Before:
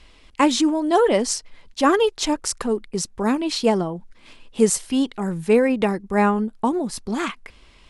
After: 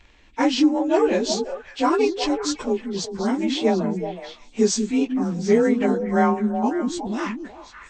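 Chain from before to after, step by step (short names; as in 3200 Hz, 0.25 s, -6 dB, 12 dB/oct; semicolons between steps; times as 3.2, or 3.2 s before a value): inharmonic rescaling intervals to 92%; delay with a stepping band-pass 0.185 s, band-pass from 240 Hz, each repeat 1.4 oct, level -3 dB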